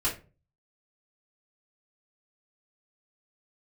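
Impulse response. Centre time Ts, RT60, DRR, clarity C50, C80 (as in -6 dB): 22 ms, 0.35 s, -7.5 dB, 9.5 dB, 16.5 dB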